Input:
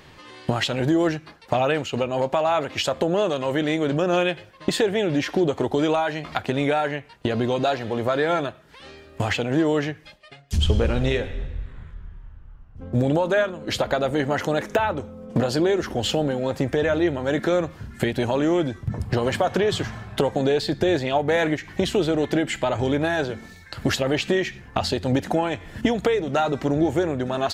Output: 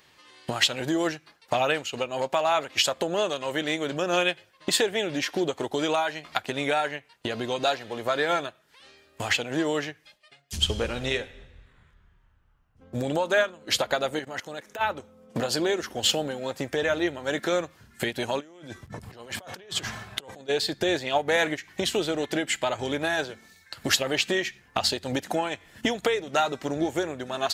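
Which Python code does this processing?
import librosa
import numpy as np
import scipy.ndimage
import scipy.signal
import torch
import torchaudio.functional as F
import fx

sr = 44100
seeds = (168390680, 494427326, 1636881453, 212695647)

y = fx.level_steps(x, sr, step_db=14, at=(14.19, 14.81))
y = fx.over_compress(y, sr, threshold_db=-31.0, ratio=-1.0, at=(18.39, 20.48), fade=0.02)
y = fx.tilt_eq(y, sr, slope=2.5)
y = fx.upward_expand(y, sr, threshold_db=-39.0, expansion=1.5)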